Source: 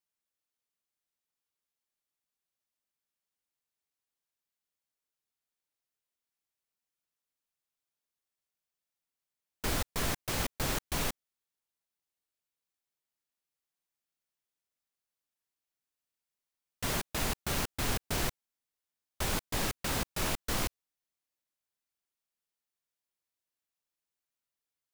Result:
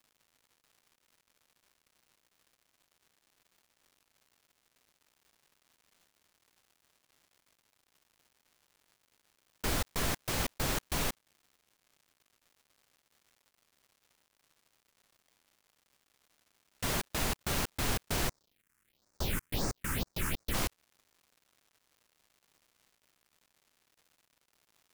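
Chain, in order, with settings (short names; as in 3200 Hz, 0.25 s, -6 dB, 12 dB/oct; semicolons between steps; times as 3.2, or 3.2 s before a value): crackle 280/s -54 dBFS; 18.28–20.53 phaser stages 4, 0.89 Hz -> 3.6 Hz, lowest notch 610–3100 Hz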